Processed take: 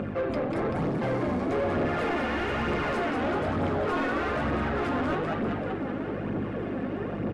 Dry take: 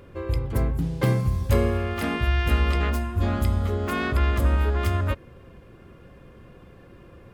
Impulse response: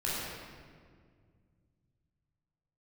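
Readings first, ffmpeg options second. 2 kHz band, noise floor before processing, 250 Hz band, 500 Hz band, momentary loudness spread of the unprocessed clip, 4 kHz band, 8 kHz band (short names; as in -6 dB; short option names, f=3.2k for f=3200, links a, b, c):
0.0 dB, -49 dBFS, +1.5 dB, +2.5 dB, 5 LU, -4.0 dB, under -10 dB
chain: -filter_complex "[0:a]flanger=delay=6.9:depth=4.3:regen=-65:speed=0.3:shape=sinusoidal,aeval=exprs='val(0)+0.01*(sin(2*PI*50*n/s)+sin(2*PI*2*50*n/s)/2+sin(2*PI*3*50*n/s)/3+sin(2*PI*4*50*n/s)/4+sin(2*PI*5*50*n/s)/5)':c=same,areverse,acompressor=threshold=-33dB:ratio=6,areverse,tremolo=f=160:d=0.824,highpass=85,asplit=2[a][b];[b]asplit=8[c][d][e][f][g][h][i][j];[c]adelay=193,afreqshift=67,volume=-6dB[k];[d]adelay=386,afreqshift=134,volume=-10.7dB[l];[e]adelay=579,afreqshift=201,volume=-15.5dB[m];[f]adelay=772,afreqshift=268,volume=-20.2dB[n];[g]adelay=965,afreqshift=335,volume=-24.9dB[o];[h]adelay=1158,afreqshift=402,volume=-29.7dB[p];[i]adelay=1351,afreqshift=469,volume=-34.4dB[q];[j]adelay=1544,afreqshift=536,volume=-39.1dB[r];[k][l][m][n][o][p][q][r]amix=inputs=8:normalize=0[s];[a][s]amix=inputs=2:normalize=0,aphaser=in_gain=1:out_gain=1:delay=4.2:decay=0.41:speed=1.1:type=triangular,bandreject=f=1k:w=12,aresample=22050,aresample=44100,asplit=2[t][u];[u]highpass=f=720:p=1,volume=27dB,asoftclip=type=tanh:threshold=-24.5dB[v];[t][v]amix=inputs=2:normalize=0,lowpass=f=2.4k:p=1,volume=-6dB,highshelf=f=2.5k:g=-11.5,volume=6.5dB"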